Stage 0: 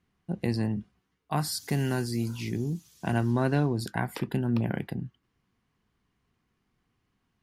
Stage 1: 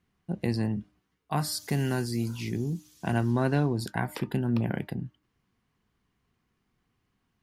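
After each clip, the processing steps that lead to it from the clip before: de-hum 303.8 Hz, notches 4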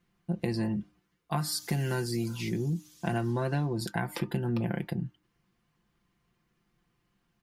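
comb 5.8 ms, depth 62%; compressor 5:1, threshold -26 dBFS, peak gain reduction 6.5 dB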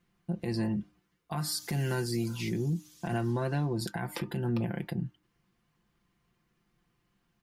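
limiter -22 dBFS, peak gain reduction 8 dB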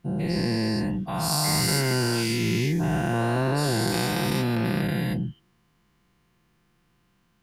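spectral dilation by 0.48 s; gain +1.5 dB

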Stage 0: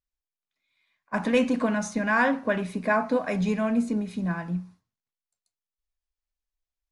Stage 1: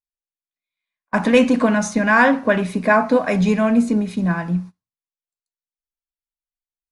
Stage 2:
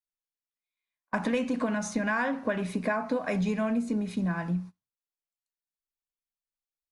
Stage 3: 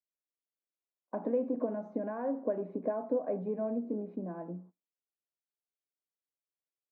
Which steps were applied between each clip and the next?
gate -39 dBFS, range -22 dB; gain +8.5 dB
compressor, threshold -19 dBFS, peak gain reduction 10.5 dB; gain -6 dB
Butterworth band-pass 430 Hz, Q 1.1

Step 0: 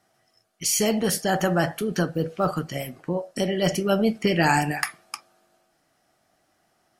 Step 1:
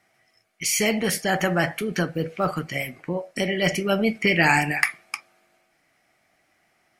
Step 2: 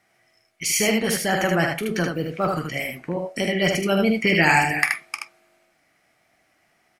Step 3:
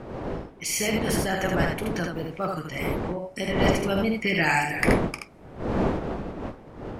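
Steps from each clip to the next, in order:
bell 2200 Hz +14 dB 0.5 oct; gain -1 dB
early reflections 46 ms -13 dB, 77 ms -4 dB
wind noise 490 Hz -24 dBFS; gain -5.5 dB

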